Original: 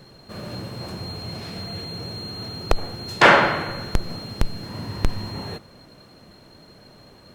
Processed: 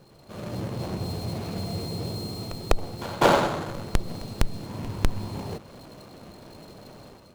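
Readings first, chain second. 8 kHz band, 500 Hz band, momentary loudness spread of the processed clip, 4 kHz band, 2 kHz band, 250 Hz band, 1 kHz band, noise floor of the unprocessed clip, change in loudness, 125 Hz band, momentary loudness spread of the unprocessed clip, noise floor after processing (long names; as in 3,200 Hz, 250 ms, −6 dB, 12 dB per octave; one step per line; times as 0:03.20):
+0.5 dB, −2.5 dB, 23 LU, −7.0 dB, −13.0 dB, −0.5 dB, −5.5 dB, −50 dBFS, −5.5 dB, 0.0 dB, 18 LU, −52 dBFS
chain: running median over 25 samples
echo ahead of the sound 200 ms −20 dB
automatic gain control gain up to 9.5 dB
one half of a high-frequency compander encoder only
level −6.5 dB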